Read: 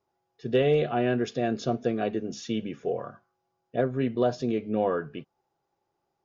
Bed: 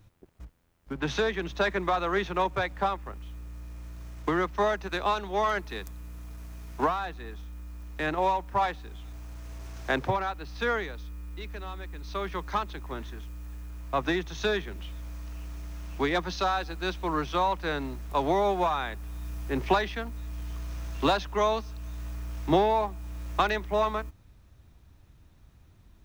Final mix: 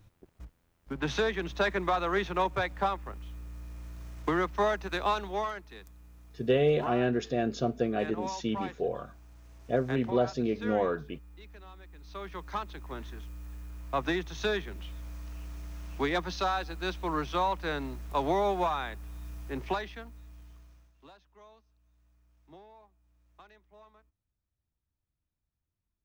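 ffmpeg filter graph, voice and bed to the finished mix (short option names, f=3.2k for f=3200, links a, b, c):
-filter_complex "[0:a]adelay=5950,volume=-2dB[a];[1:a]volume=7.5dB,afade=t=out:st=5.24:d=0.31:silence=0.316228,afade=t=in:st=11.88:d=1.31:silence=0.354813,afade=t=out:st=18.61:d=2.32:silence=0.0398107[b];[a][b]amix=inputs=2:normalize=0"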